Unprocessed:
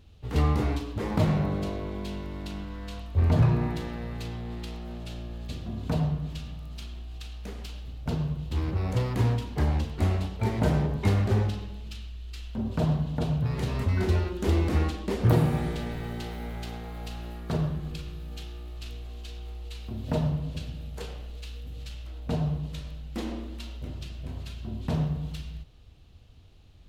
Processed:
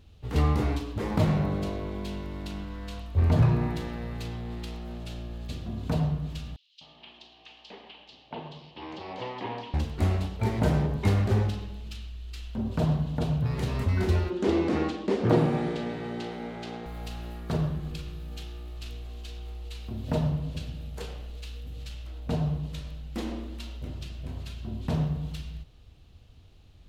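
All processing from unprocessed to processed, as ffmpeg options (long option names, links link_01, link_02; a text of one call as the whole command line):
ffmpeg -i in.wav -filter_complex "[0:a]asettb=1/sr,asplit=3[link_01][link_02][link_03];[link_01]atrim=end=6.564[link_04];[link_02]atrim=start=6.56:end=9.74,asetpts=PTS-STARTPTS,afade=type=in:duration=0.004:curve=qsin,afade=type=out:start_time=3.176:duration=0.004:curve=qsin,highpass=390,equalizer=frequency=480:width_type=q:width=4:gain=-3,equalizer=frequency=870:width_type=q:width=4:gain=6,equalizer=frequency=1400:width_type=q:width=4:gain=-9,equalizer=frequency=3000:width_type=q:width=4:gain=6,lowpass=frequency=4500:width=0.5412,lowpass=frequency=4500:width=1.3066,acrossover=split=3400[link_05][link_06];[link_05]adelay=250[link_07];[link_07][link_06]amix=inputs=2:normalize=0,atrim=end_sample=140238[link_08];[link_03]atrim=start=9.736[link_09];[link_04][link_08]acrossfade=duration=0.004:curve1=hsin:curve2=qsin[link_10];[link_10][link_09]acrossfade=duration=0.004:curve1=qsin:curve2=hsin,asettb=1/sr,asplit=3[link_11][link_12][link_13];[link_11]atrim=end=14.304[link_14];[link_12]atrim=start=14.3:end=16.86,asetpts=PTS-STARTPTS,afade=type=in:duration=0.004:curve=qsin,afade=type=out:start_time=2.556:duration=0.004:curve=qsin,highpass=290,lowpass=6100,lowshelf=frequency=440:gain=10.5[link_15];[link_13]atrim=start=16.856[link_16];[link_14][link_15]acrossfade=duration=0.004:curve1=hsin:curve2=qsin[link_17];[link_17][link_16]acrossfade=duration=0.004:curve1=qsin:curve2=hsin" out.wav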